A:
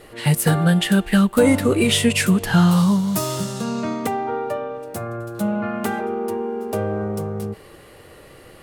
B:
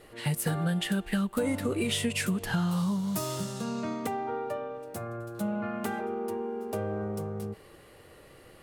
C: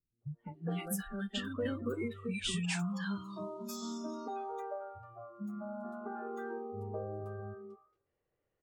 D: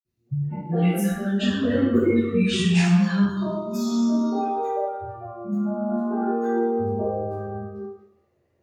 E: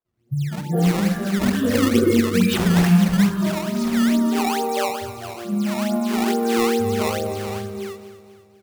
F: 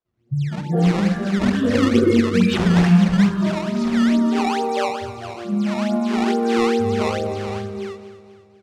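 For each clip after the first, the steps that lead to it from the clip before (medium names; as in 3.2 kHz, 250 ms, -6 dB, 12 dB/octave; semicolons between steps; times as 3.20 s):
compression 4:1, threshold -17 dBFS, peak gain reduction 6.5 dB; trim -8.5 dB
spectral noise reduction 25 dB; three bands offset in time lows, mids, highs 210/530 ms, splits 240/1200 Hz; level-controlled noise filter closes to 2.1 kHz, open at -31.5 dBFS; trim -5 dB
reverberation RT60 0.80 s, pre-delay 46 ms; trim +2.5 dB
decimation with a swept rate 16×, swing 160% 2.3 Hz; feedback delay 245 ms, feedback 51%, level -14 dB; trim +2.5 dB
distance through air 89 m; trim +1.5 dB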